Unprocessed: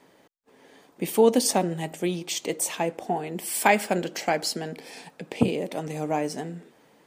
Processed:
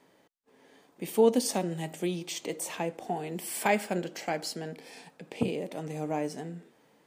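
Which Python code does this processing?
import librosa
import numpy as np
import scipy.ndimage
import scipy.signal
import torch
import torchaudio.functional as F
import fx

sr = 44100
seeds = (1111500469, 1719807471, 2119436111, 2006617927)

y = fx.hpss(x, sr, part='percussive', gain_db=-5)
y = fx.band_squash(y, sr, depth_pct=40, at=(1.53, 3.66))
y = F.gain(torch.from_numpy(y), -3.5).numpy()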